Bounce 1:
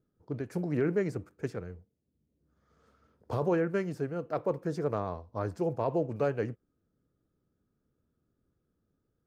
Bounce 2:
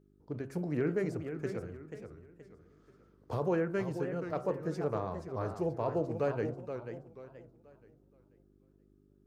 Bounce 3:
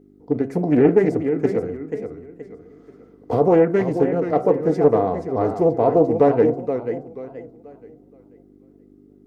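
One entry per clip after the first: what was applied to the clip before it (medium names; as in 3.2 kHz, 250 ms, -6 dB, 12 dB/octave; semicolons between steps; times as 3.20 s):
de-hum 67.99 Hz, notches 23; mains buzz 50 Hz, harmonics 8, -64 dBFS -1 dB/octave; modulated delay 481 ms, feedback 33%, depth 189 cents, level -8.5 dB; trim -2.5 dB
small resonant body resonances 280/450/700/2000 Hz, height 14 dB, ringing for 30 ms; loudspeaker Doppler distortion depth 0.23 ms; trim +6.5 dB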